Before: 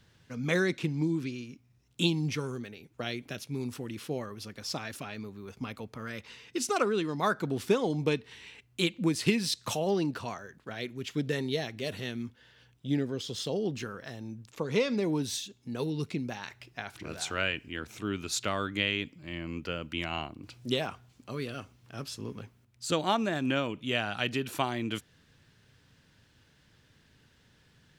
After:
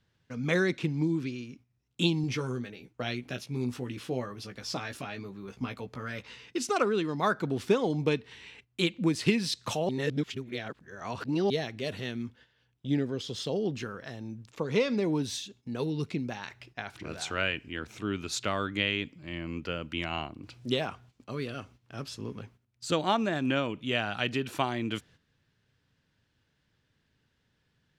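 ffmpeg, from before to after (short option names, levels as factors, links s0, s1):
-filter_complex "[0:a]asettb=1/sr,asplit=3[s0][s1][s2];[s0]atrim=end=2.224[s3];[s1]atrim=start=2.22:end=6.46,asetpts=PTS-STARTPTS,afade=t=in:d=0.004:c=qsin,afade=t=out:st=4.236:d=0.004:c=qsin,asplit=2[s4][s5];[s5]adelay=16,volume=0.501[s6];[s4][s6]amix=inputs=2:normalize=0,atrim=end_sample=186984[s7];[s2]atrim=start=6.456[s8];[s3][s7]acrossfade=d=0.004:c1=hsin:c2=qsin[s9];[s9][s8]acrossfade=d=0.004:c1=qsin:c2=hsin,asplit=3[s10][s11][s12];[s10]atrim=end=9.892[s13];[s11]atrim=start=9.888:end=11.502,asetpts=PTS-STARTPTS,areverse[s14];[s12]atrim=start=11.498[s15];[s13][s14]acrossfade=d=0.004:c1=hsin:c2=hsin[s16];[s16][s15]acrossfade=d=0.004:c1=hsin:c2=hsin,agate=range=0.282:threshold=0.00178:ratio=16:detection=peak,highshelf=f=9400:g=-11.5,volume=1.12"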